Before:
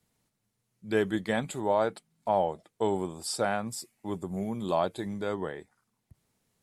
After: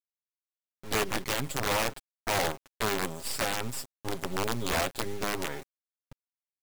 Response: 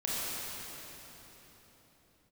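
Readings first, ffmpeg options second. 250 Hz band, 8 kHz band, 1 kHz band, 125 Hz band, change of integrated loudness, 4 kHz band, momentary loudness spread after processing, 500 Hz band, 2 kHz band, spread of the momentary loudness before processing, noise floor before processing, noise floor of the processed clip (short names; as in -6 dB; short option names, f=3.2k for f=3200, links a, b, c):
-4.5 dB, +6.0 dB, -1.5 dB, +0.5 dB, -0.5 dB, +8.0 dB, 8 LU, -4.5 dB, +5.5 dB, 10 LU, -80 dBFS, under -85 dBFS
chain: -af "acrusher=bits=5:dc=4:mix=0:aa=0.000001,aecho=1:1:7.4:0.67,alimiter=limit=-21.5dB:level=0:latency=1:release=57,aeval=exprs='(mod(15.8*val(0)+1,2)-1)/15.8':c=same,volume=3.5dB"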